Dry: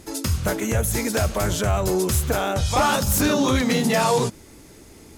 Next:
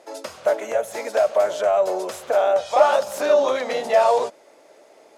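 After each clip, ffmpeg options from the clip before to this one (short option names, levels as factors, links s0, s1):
-af "highpass=f=600:t=q:w=4.9,aemphasis=mode=reproduction:type=50fm,volume=0.668"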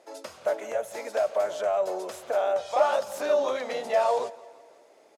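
-af "aecho=1:1:169|338|507|676:0.0891|0.049|0.027|0.0148,volume=0.447"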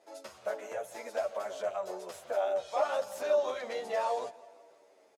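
-filter_complex "[0:a]asplit=2[s0][s1];[s1]adelay=10,afreqshift=-0.85[s2];[s0][s2]amix=inputs=2:normalize=1,volume=0.708"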